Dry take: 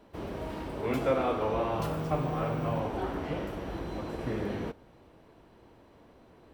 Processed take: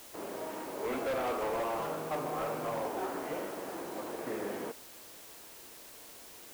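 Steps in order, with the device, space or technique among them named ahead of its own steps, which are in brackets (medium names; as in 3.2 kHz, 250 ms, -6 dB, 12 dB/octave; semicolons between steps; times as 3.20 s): aircraft radio (band-pass 350–2400 Hz; hard clipper -30 dBFS, distortion -10 dB; white noise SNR 14 dB)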